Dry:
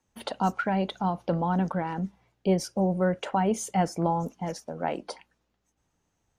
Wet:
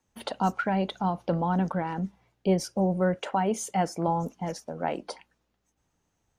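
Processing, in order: 3.16–4.08 low shelf 130 Hz -9 dB

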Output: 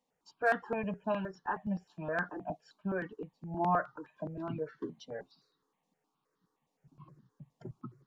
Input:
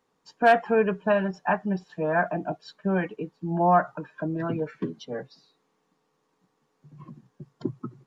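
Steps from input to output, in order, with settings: step phaser 9.6 Hz 380–2400 Hz; gain -6.5 dB

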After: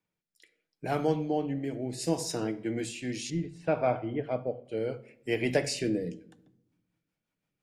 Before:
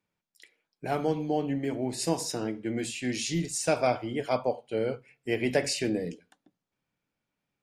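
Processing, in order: 1.16–1.64 high shelf 4900 Hz -6.5 dB; rotary speaker horn 0.7 Hz, later 6 Hz, at 6.11; 3.3–4.65 air absorption 490 m; shoebox room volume 2700 m³, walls furnished, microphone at 0.58 m

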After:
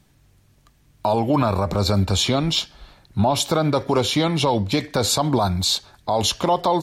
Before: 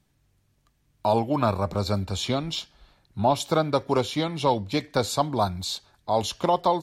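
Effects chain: maximiser +19 dB; gain -8.5 dB

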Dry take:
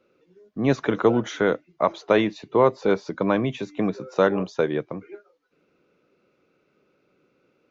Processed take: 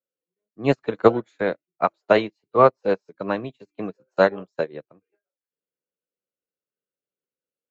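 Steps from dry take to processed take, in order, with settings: formant shift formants +2 st; upward expander 2.5:1, over -39 dBFS; gain +6 dB

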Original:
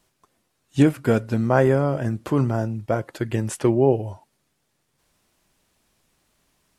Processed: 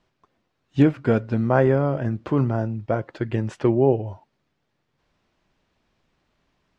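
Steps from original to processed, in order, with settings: air absorption 180 m

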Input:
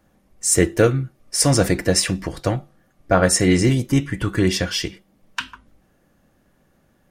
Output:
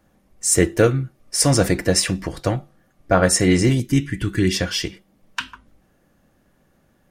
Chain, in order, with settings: 3.8–4.55 band shelf 780 Hz -11 dB

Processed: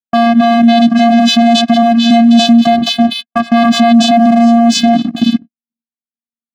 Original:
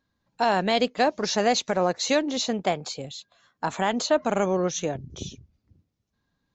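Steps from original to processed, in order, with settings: vocal rider within 4 dB 2 s; vocoder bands 8, square 233 Hz; low-pass opened by the level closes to 2100 Hz, open at -20 dBFS; bell 3600 Hz +10 dB 0.56 oct; reverse echo 0.282 s -9 dB; gate -47 dBFS, range -54 dB; sample leveller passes 1; maximiser +26 dB; gain -1 dB

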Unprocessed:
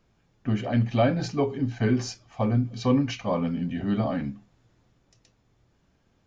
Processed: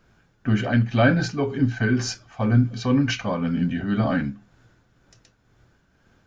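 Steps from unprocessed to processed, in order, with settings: dynamic EQ 650 Hz, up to -4 dB, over -37 dBFS, Q 0.84; tremolo triangle 2 Hz, depth 55%; bell 1500 Hz +11 dB 0.29 oct; gain +7.5 dB

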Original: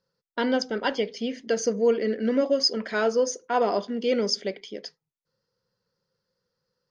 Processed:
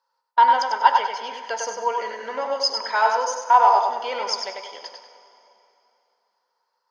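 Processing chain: resonant high-pass 910 Hz, resonance Q 11; on a send: tape echo 98 ms, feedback 38%, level -3.5 dB, low-pass 5600 Hz; on the sum: plate-style reverb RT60 3 s, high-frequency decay 0.85×, DRR 12 dB

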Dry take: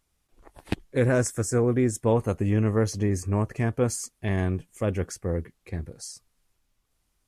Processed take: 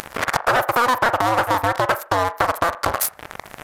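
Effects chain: cycle switcher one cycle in 2, inverted; band shelf 530 Hz +15 dB 2.3 oct; added harmonics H 3 -17 dB, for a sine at 3 dBFS; upward compressor, threshold -16 dBFS; sample leveller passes 3; compressor 5:1, threshold -17 dBFS, peak gain reduction 14 dB; high shelf 2300 Hz +8 dB; on a send: band-limited delay 83 ms, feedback 48%, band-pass 440 Hz, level -11 dB; on the sum: downsampling 16000 Hz; speed mistake 7.5 ips tape played at 15 ips

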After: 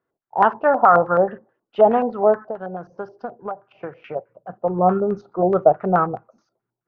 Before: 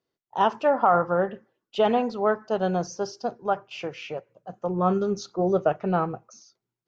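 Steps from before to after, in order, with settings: LFO low-pass square 4.7 Hz 730–1500 Hz; 2.47–4.16 compressor 8:1, threshold -29 dBFS, peak gain reduction 15 dB; gain +2.5 dB

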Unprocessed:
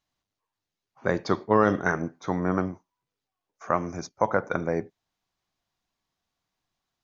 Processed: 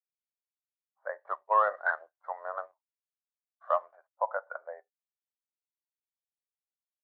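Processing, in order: elliptic band-pass 580–1900 Hz, stop band 50 dB; 1.25–3.96 sample leveller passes 1; spectral expander 1.5:1; gain -3.5 dB

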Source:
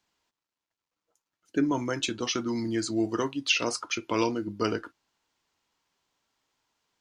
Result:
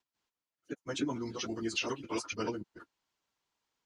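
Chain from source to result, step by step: slices in reverse order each 0.265 s, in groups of 2; plain phase-vocoder stretch 0.55×; gain -4 dB

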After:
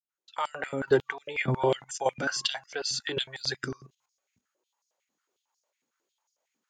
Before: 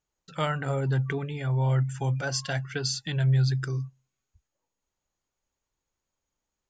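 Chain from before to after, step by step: opening faded in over 0.84 s; level quantiser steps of 13 dB; stepped high-pass 11 Hz 240–5200 Hz; gain +8 dB

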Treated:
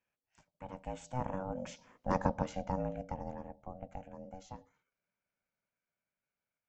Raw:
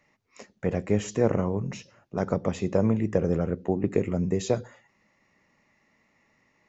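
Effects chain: Doppler pass-by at 2.03, 13 m/s, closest 2.7 m; ring modulator 380 Hz; gain +1 dB

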